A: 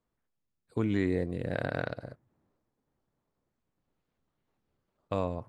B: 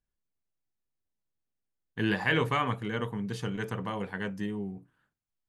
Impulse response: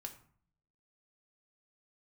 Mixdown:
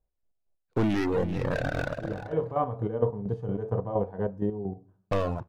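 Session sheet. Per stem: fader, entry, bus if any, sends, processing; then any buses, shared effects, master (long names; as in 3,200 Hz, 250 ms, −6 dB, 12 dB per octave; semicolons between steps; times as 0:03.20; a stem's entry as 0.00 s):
−6.5 dB, 0.00 s, send −12.5 dB, echo send −11 dB, low-pass with resonance 2,800 Hz, resonance Q 2.8; leveller curve on the samples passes 5; reverb reduction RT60 1.1 s
+0.5 dB, 0.00 s, send −8.5 dB, no echo send, drawn EQ curve 100 Hz 0 dB, 190 Hz −7 dB, 650 Hz +6 dB, 1,900 Hz −18 dB; harmonic and percussive parts rebalanced harmonic +9 dB; square-wave tremolo 4.3 Hz, depth 60%, duty 35%; automatic ducking −20 dB, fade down 0.20 s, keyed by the first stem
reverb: on, RT60 0.50 s, pre-delay 4 ms
echo: single-tap delay 387 ms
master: low-pass filter 3,500 Hz 6 dB per octave; parametric band 2,500 Hz −5 dB 1.1 octaves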